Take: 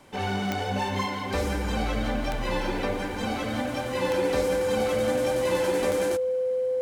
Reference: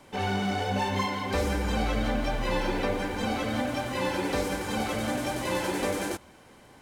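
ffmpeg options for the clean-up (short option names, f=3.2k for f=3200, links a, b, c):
-af "adeclick=t=4,bandreject=f=510:w=30"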